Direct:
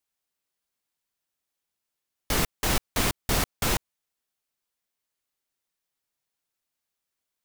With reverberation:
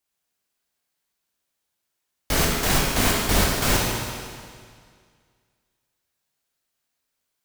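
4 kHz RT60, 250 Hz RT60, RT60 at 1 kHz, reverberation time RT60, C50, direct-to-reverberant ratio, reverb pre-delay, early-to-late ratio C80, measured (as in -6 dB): 1.9 s, 2.0 s, 2.0 s, 2.0 s, -0.5 dB, -3.0 dB, 16 ms, 1.5 dB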